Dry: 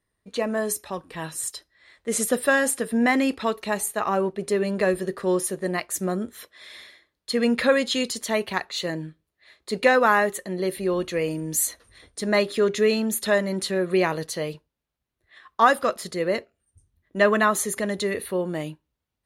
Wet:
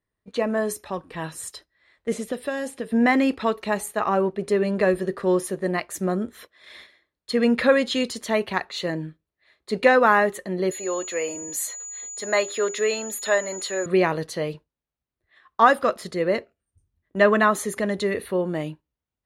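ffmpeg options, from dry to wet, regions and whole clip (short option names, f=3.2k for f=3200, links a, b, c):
-filter_complex "[0:a]asettb=1/sr,asplit=3[a][b][c];[a]atrim=end=2.124[d];[b]atrim=start=2.12:end=2.92,asetpts=PTS-STARTPTS,afade=t=in:d=0.004:c=qsin,afade=t=out:st=0.796:d=0.004:c=qsin,equalizer=f=1.4k:w=1.3:g=-8.5,acrossover=split=1000|2000|4500[e][f][g][h];[e]acompressor=threshold=-30dB:ratio=3[i];[f]acompressor=threshold=-39dB:ratio=3[j];[g]acompressor=threshold=-45dB:ratio=3[k];[h]acompressor=threshold=-40dB:ratio=3[l];[i][j][k][l]amix=inputs=4:normalize=0[m];[c]atrim=start=2.916[n];[d][m]acrossfade=d=0.004:c1=hsin:c2=qsin[o];[o][n]acrossfade=d=0.004:c1=qsin:c2=hsin,asettb=1/sr,asplit=3[p][q][r];[p]atrim=end=10.714[s];[q]atrim=start=10.71:end=13.86,asetpts=PTS-STARTPTS,afade=t=in:d=0.004:c=qsin,afade=t=out:st=3.146:d=0.004:c=qsin,highpass=510,aeval=exprs='val(0)+0.0355*sin(2*PI*6900*n/s)':c=same[t];[r]atrim=start=13.856[u];[s][t]acrossfade=d=0.004:c1=hsin:c2=qsin[v];[v][u]acrossfade=d=0.004:c1=qsin:c2=hsin,agate=range=-7dB:threshold=-44dB:ratio=16:detection=peak,highshelf=f=4.6k:g=-9.5,volume=2dB"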